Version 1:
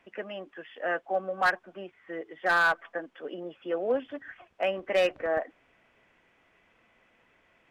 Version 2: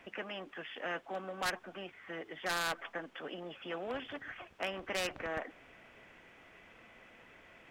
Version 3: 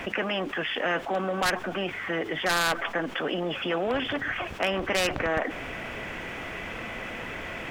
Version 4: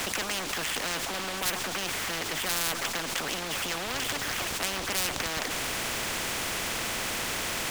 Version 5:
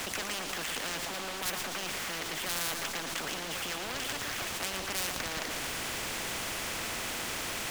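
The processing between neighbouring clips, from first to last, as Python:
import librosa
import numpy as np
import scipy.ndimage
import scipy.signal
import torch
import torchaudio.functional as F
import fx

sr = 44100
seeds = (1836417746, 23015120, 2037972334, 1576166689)

y1 = fx.peak_eq(x, sr, hz=1000.0, db=-2.5, octaves=0.28)
y1 = fx.spectral_comp(y1, sr, ratio=2.0)
y1 = y1 * librosa.db_to_amplitude(-5.0)
y2 = fx.low_shelf(y1, sr, hz=170.0, db=4.5)
y2 = fx.env_flatten(y2, sr, amount_pct=50)
y2 = y2 * librosa.db_to_amplitude(8.5)
y3 = fx.leveller(y2, sr, passes=2)
y3 = fx.spectral_comp(y3, sr, ratio=4.0)
y4 = y3 + 10.0 ** (-7.0 / 20.0) * np.pad(y3, (int(115 * sr / 1000.0), 0))[:len(y3)]
y4 = y4 * librosa.db_to_amplitude(-5.0)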